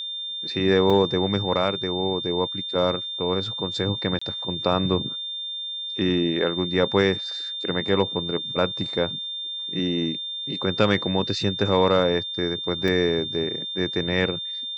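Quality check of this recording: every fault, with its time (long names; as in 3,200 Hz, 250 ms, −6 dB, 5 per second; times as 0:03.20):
whistle 3,600 Hz −29 dBFS
0:00.90: drop-out 4.1 ms
0:04.19–0:04.21: drop-out 25 ms
0:12.88: drop-out 2.5 ms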